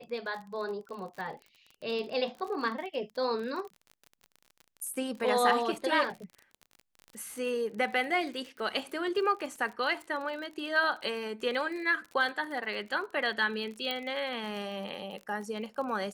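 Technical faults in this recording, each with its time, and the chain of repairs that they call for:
crackle 38 per s -38 dBFS
13.91 s: pop -19 dBFS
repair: de-click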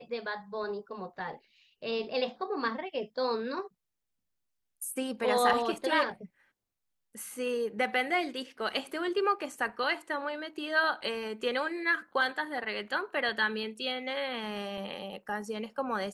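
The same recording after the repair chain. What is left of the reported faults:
13.91 s: pop

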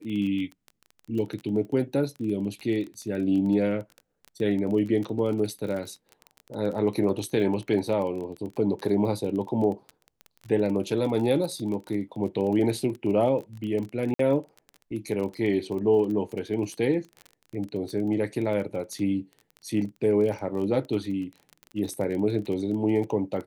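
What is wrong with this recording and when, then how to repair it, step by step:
crackle 25 per s -32 dBFS
14.14–14.19 s: dropout 53 ms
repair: de-click; interpolate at 14.14 s, 53 ms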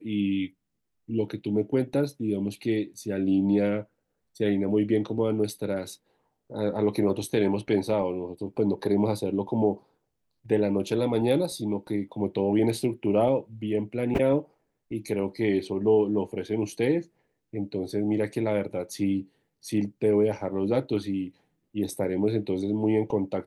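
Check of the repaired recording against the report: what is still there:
nothing left

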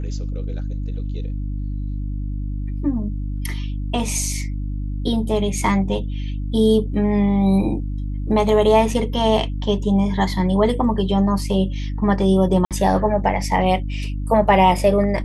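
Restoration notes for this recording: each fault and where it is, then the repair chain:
hum 50 Hz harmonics 6 -25 dBFS
12.65–12.71 s: dropout 57 ms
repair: de-hum 50 Hz, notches 6; interpolate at 12.65 s, 57 ms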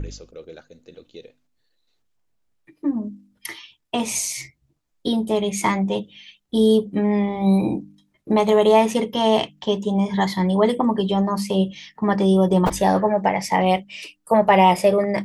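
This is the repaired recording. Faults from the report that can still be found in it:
nothing left

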